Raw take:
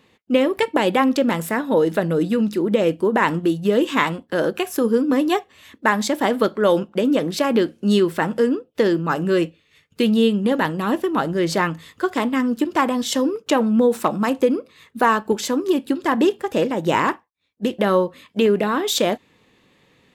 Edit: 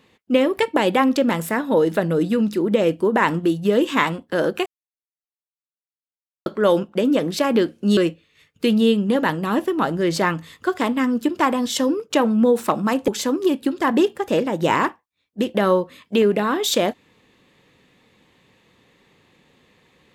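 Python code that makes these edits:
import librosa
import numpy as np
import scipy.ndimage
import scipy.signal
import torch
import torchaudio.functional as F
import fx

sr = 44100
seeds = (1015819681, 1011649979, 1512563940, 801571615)

y = fx.edit(x, sr, fx.silence(start_s=4.66, length_s=1.8),
    fx.cut(start_s=7.97, length_s=1.36),
    fx.cut(start_s=14.44, length_s=0.88), tone=tone)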